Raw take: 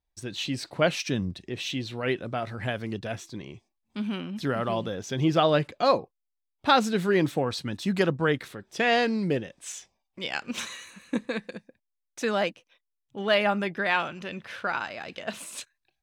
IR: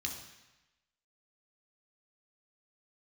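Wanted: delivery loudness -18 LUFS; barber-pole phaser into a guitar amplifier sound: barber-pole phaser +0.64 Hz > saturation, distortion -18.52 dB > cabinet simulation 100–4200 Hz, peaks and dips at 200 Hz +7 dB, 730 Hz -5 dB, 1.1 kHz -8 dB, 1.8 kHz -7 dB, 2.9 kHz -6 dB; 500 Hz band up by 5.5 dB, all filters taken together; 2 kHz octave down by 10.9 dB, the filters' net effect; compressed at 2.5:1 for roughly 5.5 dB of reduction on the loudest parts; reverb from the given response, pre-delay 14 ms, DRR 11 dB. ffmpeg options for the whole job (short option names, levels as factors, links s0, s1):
-filter_complex "[0:a]equalizer=f=500:t=o:g=8.5,equalizer=f=2000:t=o:g=-9,acompressor=threshold=0.0891:ratio=2.5,asplit=2[s0][s1];[1:a]atrim=start_sample=2205,adelay=14[s2];[s1][s2]afir=irnorm=-1:irlink=0,volume=0.251[s3];[s0][s3]amix=inputs=2:normalize=0,asplit=2[s4][s5];[s5]afreqshift=0.64[s6];[s4][s6]amix=inputs=2:normalize=1,asoftclip=threshold=0.112,highpass=100,equalizer=f=200:t=q:w=4:g=7,equalizer=f=730:t=q:w=4:g=-5,equalizer=f=1100:t=q:w=4:g=-8,equalizer=f=1800:t=q:w=4:g=-7,equalizer=f=2900:t=q:w=4:g=-6,lowpass=f=4200:w=0.5412,lowpass=f=4200:w=1.3066,volume=4.73"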